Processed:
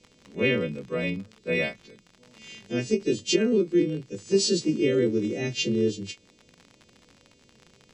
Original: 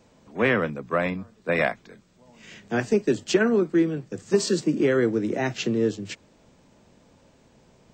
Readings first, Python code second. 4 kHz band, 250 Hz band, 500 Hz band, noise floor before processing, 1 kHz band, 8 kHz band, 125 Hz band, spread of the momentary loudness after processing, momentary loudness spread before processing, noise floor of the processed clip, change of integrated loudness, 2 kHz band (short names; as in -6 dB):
+4.5 dB, -1.5 dB, -2.0 dB, -59 dBFS, -14.0 dB, +2.0 dB, -1.0 dB, 13 LU, 12 LU, -60 dBFS, -1.5 dB, -4.0 dB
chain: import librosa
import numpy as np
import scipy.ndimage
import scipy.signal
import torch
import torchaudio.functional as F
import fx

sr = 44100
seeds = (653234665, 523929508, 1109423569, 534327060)

y = fx.freq_snap(x, sr, grid_st=2)
y = fx.band_shelf(y, sr, hz=1100.0, db=-16.0, octaves=1.7)
y = fx.dmg_crackle(y, sr, seeds[0], per_s=58.0, level_db=-32.0)
y = fx.air_absorb(y, sr, metres=85.0)
y = fx.end_taper(y, sr, db_per_s=320.0)